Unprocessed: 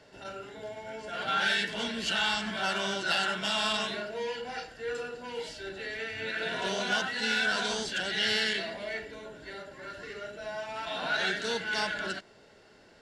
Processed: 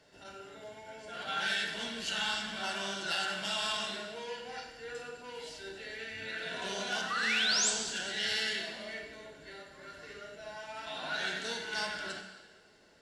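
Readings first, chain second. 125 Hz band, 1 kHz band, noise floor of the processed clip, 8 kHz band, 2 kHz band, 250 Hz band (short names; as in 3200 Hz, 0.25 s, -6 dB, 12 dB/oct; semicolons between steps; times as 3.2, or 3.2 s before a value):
-6.5 dB, -5.5 dB, -58 dBFS, +4.5 dB, -4.5 dB, -7.0 dB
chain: painted sound rise, 7.1–7.7, 1100–8300 Hz -27 dBFS; high shelf 4100 Hz +6.5 dB; plate-style reverb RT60 1.4 s, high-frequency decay 0.95×, DRR 3.5 dB; gain -8 dB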